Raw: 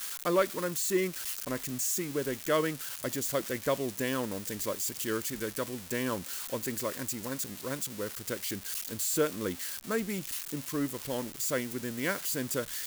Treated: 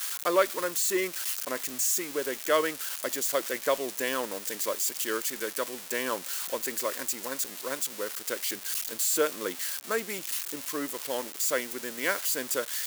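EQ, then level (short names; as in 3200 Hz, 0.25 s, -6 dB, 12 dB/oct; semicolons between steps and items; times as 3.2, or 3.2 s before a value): HPF 440 Hz 12 dB/oct; +4.5 dB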